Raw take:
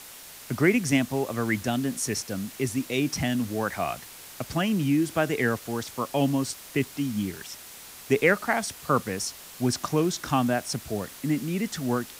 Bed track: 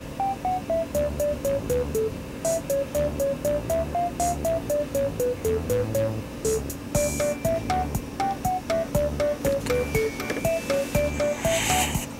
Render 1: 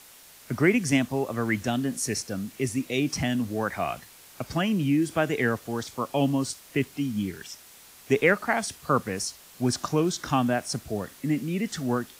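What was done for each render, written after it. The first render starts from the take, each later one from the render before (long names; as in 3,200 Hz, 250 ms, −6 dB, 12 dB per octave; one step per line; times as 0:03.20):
noise reduction from a noise print 6 dB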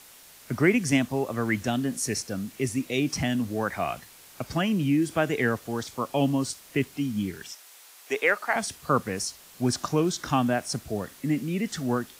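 0:07.52–0:08.56: high-pass filter 540 Hz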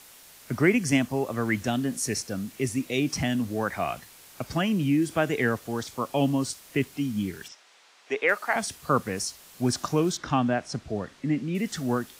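0:00.70–0:01.22: notch filter 3,700 Hz
0:07.48–0:08.29: high-frequency loss of the air 120 metres
0:10.17–0:11.55: high-frequency loss of the air 100 metres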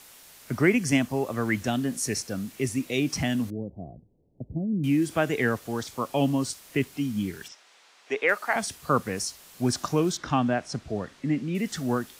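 0:03.50–0:04.84: Gaussian smoothing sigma 20 samples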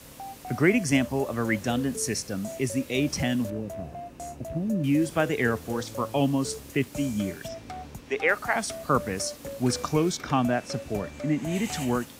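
mix in bed track −14 dB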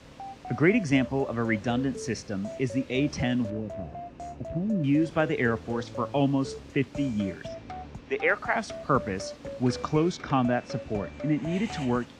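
high-frequency loss of the air 140 metres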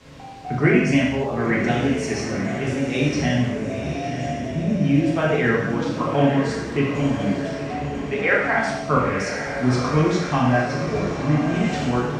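feedback delay with all-pass diffusion 969 ms, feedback 54%, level −8 dB
reverb whose tail is shaped and stops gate 290 ms falling, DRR −5.5 dB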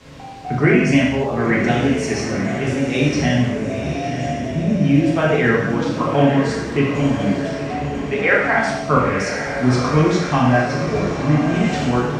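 level +3.5 dB
brickwall limiter −3 dBFS, peak gain reduction 2.5 dB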